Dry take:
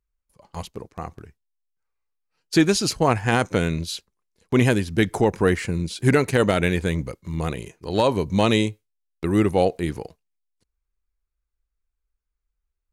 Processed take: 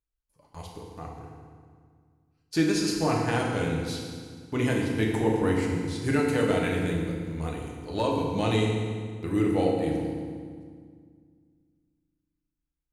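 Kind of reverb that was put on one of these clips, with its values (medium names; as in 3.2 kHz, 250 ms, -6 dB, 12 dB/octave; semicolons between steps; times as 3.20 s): FDN reverb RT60 1.9 s, low-frequency decay 1.4×, high-frequency decay 0.8×, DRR -2 dB; trim -10.5 dB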